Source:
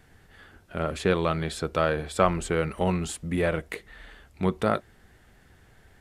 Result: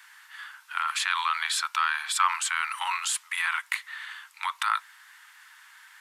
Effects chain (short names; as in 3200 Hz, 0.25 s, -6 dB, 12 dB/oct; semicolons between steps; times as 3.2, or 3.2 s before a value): steep high-pass 930 Hz 72 dB/oct; in parallel at -0.5 dB: negative-ratio compressor -38 dBFS, ratio -1; on the sum: gain +2.5 dB